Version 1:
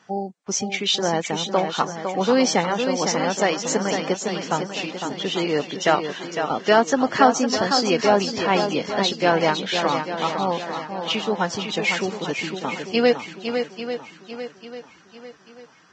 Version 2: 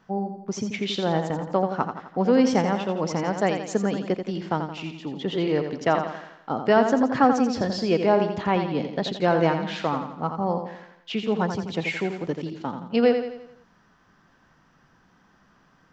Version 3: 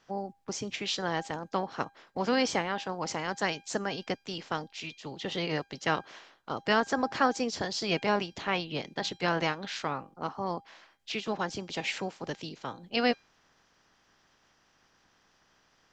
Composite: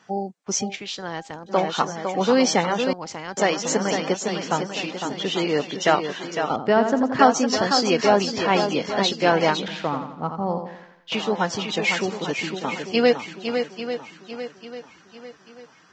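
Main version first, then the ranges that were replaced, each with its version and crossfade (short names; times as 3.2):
1
0.72–1.51 from 3, crossfade 0.10 s
2.93–3.37 from 3
6.56–7.19 from 2
9.68–11.12 from 2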